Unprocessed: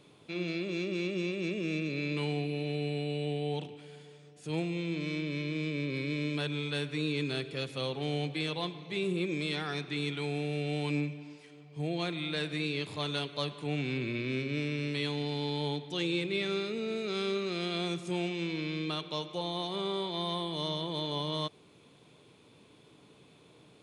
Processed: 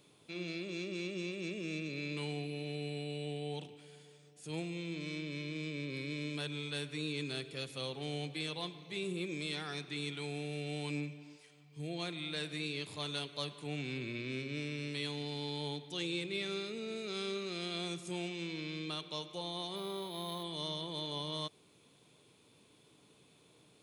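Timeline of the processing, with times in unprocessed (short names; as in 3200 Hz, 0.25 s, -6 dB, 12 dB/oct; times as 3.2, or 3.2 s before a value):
11.36–11.88 bell 190 Hz -> 930 Hz -10.5 dB
19.76–20.44 decimation joined by straight lines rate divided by 6×
whole clip: high shelf 5400 Hz +12 dB; gain -7 dB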